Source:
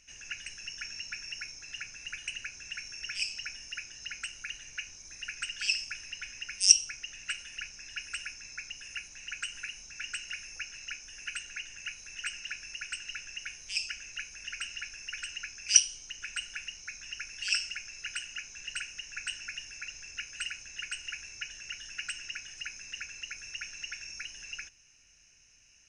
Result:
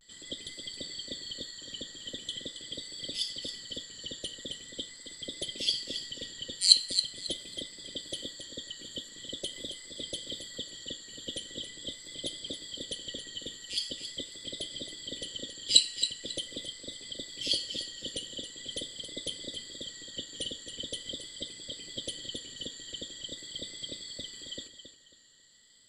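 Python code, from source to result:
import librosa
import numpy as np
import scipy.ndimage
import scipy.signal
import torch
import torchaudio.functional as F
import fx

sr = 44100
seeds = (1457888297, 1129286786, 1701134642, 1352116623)

y = fx.band_invert(x, sr, width_hz=2000)
y = fx.vibrato(y, sr, rate_hz=0.43, depth_cents=48.0)
y = fx.echo_feedback(y, sr, ms=272, feedback_pct=26, wet_db=-9.5)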